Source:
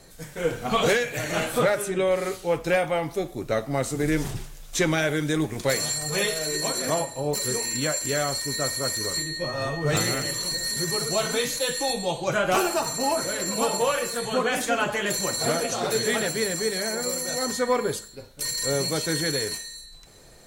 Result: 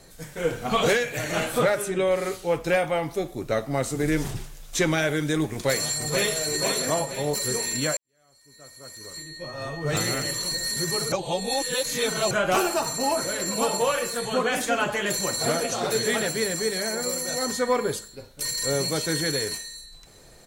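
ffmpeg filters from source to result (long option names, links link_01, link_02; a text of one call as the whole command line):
ffmpeg -i in.wav -filter_complex "[0:a]asplit=2[link_01][link_02];[link_02]afade=type=in:start_time=5.51:duration=0.01,afade=type=out:start_time=6.36:duration=0.01,aecho=0:1:480|960|1440|1920|2400|2880:0.501187|0.250594|0.125297|0.0626484|0.0313242|0.0156621[link_03];[link_01][link_03]amix=inputs=2:normalize=0,asplit=4[link_04][link_05][link_06][link_07];[link_04]atrim=end=7.97,asetpts=PTS-STARTPTS,afade=type=out:start_time=7.966:duration=0.004:curve=hsin[link_08];[link_05]atrim=start=7.97:end=11.122,asetpts=PTS-STARTPTS,afade=type=in:duration=2.24:curve=qua[link_09];[link_06]atrim=start=11.118:end=12.312,asetpts=PTS-STARTPTS,areverse[link_10];[link_07]atrim=start=12.308[link_11];[link_08][link_09]concat=n=2:v=0:a=1[link_12];[link_12][link_10]acrossfade=duration=0.004:curve1=hsin:curve2=hsin[link_13];[link_13][link_11]acrossfade=duration=0.004:curve1=hsin:curve2=hsin" out.wav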